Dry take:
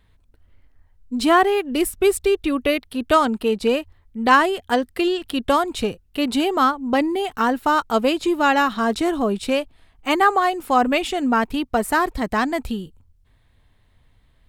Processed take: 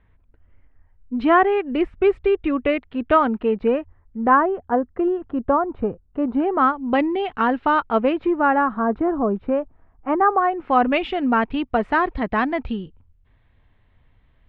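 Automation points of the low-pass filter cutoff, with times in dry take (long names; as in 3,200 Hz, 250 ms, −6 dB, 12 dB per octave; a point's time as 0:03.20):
low-pass filter 24 dB per octave
0:03.25 2,400 Hz
0:04.57 1,300 Hz
0:06.32 1,300 Hz
0:06.82 3,000 Hz
0:07.71 3,000 Hz
0:08.74 1,400 Hz
0:10.33 1,400 Hz
0:10.79 3,000 Hz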